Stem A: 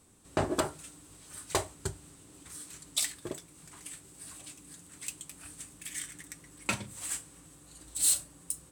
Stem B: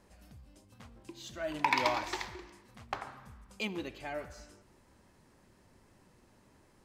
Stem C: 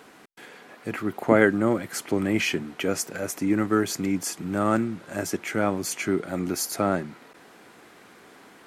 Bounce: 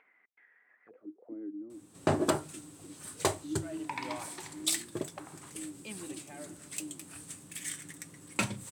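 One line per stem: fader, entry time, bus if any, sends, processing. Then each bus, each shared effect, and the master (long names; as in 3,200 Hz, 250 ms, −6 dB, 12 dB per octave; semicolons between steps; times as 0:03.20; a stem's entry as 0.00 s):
0.0 dB, 1.70 s, no send, no processing
−10.5 dB, 2.25 s, no send, no processing
−14.0 dB, 0.00 s, no send, low-pass that shuts in the quiet parts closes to 950 Hz, open at −20 dBFS; high-shelf EQ 3,300 Hz +9 dB; envelope filter 310–2,300 Hz, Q 18, down, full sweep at −24.5 dBFS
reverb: not used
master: high-pass filter 100 Hz 24 dB per octave; low-shelf EQ 410 Hz +5 dB; upward compression, threshold −50 dBFS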